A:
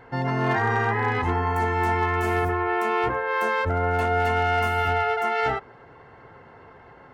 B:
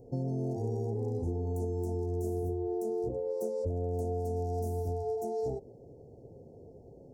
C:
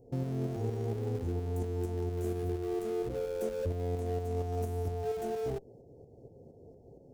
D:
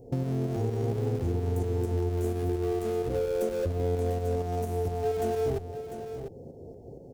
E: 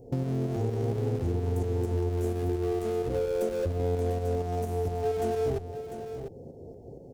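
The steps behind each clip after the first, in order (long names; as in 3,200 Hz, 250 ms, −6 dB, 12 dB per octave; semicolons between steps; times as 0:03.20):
inverse Chebyshev band-stop filter 1,100–3,300 Hz, stop band 50 dB; downward compressor, threshold −30 dBFS, peak gain reduction 8 dB
shaped tremolo saw up 4.3 Hz, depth 50%; in parallel at −10.5 dB: comparator with hysteresis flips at −38.5 dBFS
downward compressor, threshold −34 dBFS, peak gain reduction 6 dB; single-tap delay 698 ms −9.5 dB; level +8.5 dB
highs frequency-modulated by the lows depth 0.12 ms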